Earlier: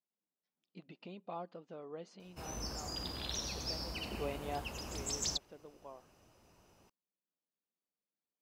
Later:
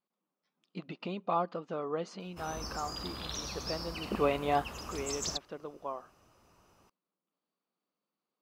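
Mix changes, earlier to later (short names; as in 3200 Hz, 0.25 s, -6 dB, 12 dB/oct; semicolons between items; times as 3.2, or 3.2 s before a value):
speech +11.0 dB; master: add bell 1200 Hz +7.5 dB 0.53 oct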